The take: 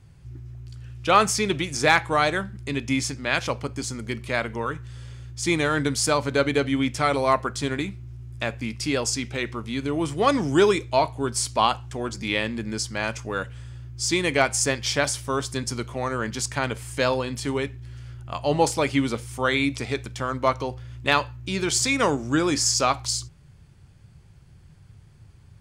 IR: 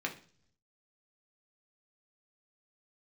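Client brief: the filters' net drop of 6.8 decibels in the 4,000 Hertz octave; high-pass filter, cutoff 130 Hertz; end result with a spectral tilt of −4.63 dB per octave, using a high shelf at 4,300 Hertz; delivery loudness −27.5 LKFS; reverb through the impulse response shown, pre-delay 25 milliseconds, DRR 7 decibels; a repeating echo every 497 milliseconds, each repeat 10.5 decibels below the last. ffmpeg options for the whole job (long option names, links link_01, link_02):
-filter_complex "[0:a]highpass=130,equalizer=frequency=4000:width_type=o:gain=-4.5,highshelf=frequency=4300:gain=-7.5,aecho=1:1:497|994|1491:0.299|0.0896|0.0269,asplit=2[link_01][link_02];[1:a]atrim=start_sample=2205,adelay=25[link_03];[link_02][link_03]afir=irnorm=-1:irlink=0,volume=-11dB[link_04];[link_01][link_04]amix=inputs=2:normalize=0,volume=-2.5dB"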